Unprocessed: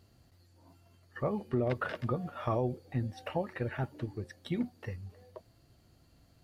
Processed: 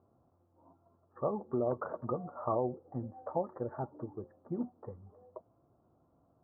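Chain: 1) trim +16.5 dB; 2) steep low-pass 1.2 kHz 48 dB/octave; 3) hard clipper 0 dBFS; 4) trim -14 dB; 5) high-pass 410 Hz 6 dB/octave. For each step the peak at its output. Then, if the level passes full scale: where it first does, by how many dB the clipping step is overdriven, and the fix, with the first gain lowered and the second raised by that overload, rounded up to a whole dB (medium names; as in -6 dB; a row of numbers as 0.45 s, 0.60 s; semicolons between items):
-3.5 dBFS, -3.5 dBFS, -3.5 dBFS, -17.5 dBFS, -20.5 dBFS; nothing clips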